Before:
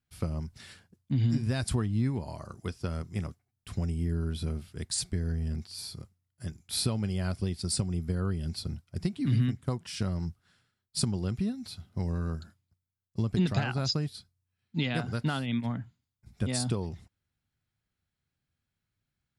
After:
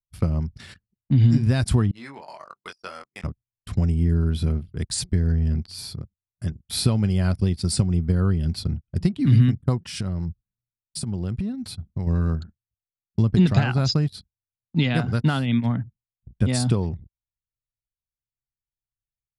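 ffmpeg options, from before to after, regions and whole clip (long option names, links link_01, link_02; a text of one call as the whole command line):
ffmpeg -i in.wav -filter_complex "[0:a]asettb=1/sr,asplit=3[link_01][link_02][link_03];[link_01]atrim=end=1.914[link_04];[link_02]atrim=start=1.91:end=3.24,asetpts=PTS-STARTPTS,afade=type=in:duration=0.004:curve=qsin,afade=type=out:start_time=1.326:duration=0.004:curve=qsin,highpass=820,asplit=2[link_05][link_06];[link_06]adelay=21,volume=-5dB[link_07];[link_05][link_07]amix=inputs=2:normalize=0,atrim=end_sample=58653[link_08];[link_03]atrim=start=3.236[link_09];[link_04][link_08]acrossfade=duration=0.004:curve1=hsin:curve2=qsin[link_10];[link_10][link_09]acrossfade=duration=0.004:curve1=qsin:curve2=hsin,asettb=1/sr,asplit=3[link_11][link_12][link_13];[link_11]atrim=end=9.954[link_14];[link_12]atrim=start=9.95:end=12.07,asetpts=PTS-STARTPTS,afade=type=in:duration=0.004:curve=qsin,afade=type=out:start_time=2.116:duration=0.004:curve=qsin,equalizer=frequency=9100:width_type=o:width=0.51:gain=7.5,acompressor=threshold=-32dB:ratio=12:attack=3.2:release=140:knee=1:detection=peak[link_15];[link_13]atrim=start=12.066[link_16];[link_14][link_15]acrossfade=duration=0.004:curve1=hsin:curve2=qsin[link_17];[link_17][link_16]acrossfade=duration=0.004:curve1=qsin:curve2=hsin,agate=range=-11dB:threshold=-52dB:ratio=16:detection=peak,anlmdn=0.00398,bass=frequency=250:gain=4,treble=frequency=4000:gain=-3,volume=6.5dB" out.wav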